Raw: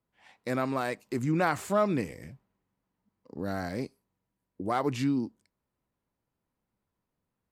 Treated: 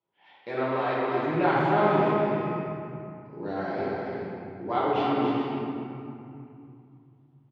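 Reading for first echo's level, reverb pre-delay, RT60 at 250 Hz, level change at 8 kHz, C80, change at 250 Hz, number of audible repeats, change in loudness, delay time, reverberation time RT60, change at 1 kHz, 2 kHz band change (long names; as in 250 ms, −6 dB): −5.0 dB, 5 ms, 3.6 s, below −20 dB, −3.0 dB, +3.0 dB, 1, +3.5 dB, 281 ms, 2.6 s, +7.5 dB, +4.0 dB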